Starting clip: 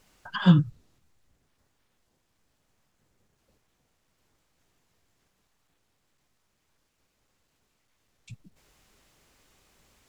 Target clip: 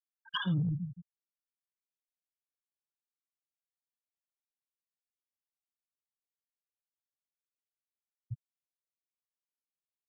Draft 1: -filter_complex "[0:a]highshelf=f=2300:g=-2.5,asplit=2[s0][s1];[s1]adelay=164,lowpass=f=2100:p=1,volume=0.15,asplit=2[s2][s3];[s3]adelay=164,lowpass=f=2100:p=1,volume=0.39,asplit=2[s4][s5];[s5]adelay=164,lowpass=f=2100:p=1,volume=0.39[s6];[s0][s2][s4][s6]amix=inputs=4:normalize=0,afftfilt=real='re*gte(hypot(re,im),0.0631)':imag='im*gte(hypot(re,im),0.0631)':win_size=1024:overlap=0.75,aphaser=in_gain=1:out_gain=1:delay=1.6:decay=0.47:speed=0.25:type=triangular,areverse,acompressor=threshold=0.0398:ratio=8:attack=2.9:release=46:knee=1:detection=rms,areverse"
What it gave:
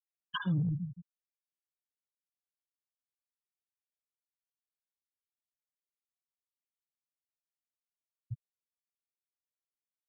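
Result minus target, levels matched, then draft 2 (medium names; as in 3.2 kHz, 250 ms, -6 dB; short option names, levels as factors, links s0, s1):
4 kHz band -4.0 dB
-filter_complex "[0:a]highshelf=f=2300:g=6,asplit=2[s0][s1];[s1]adelay=164,lowpass=f=2100:p=1,volume=0.15,asplit=2[s2][s3];[s3]adelay=164,lowpass=f=2100:p=1,volume=0.39,asplit=2[s4][s5];[s5]adelay=164,lowpass=f=2100:p=1,volume=0.39[s6];[s0][s2][s4][s6]amix=inputs=4:normalize=0,afftfilt=real='re*gte(hypot(re,im),0.0631)':imag='im*gte(hypot(re,im),0.0631)':win_size=1024:overlap=0.75,aphaser=in_gain=1:out_gain=1:delay=1.6:decay=0.47:speed=0.25:type=triangular,areverse,acompressor=threshold=0.0398:ratio=8:attack=2.9:release=46:knee=1:detection=rms,areverse"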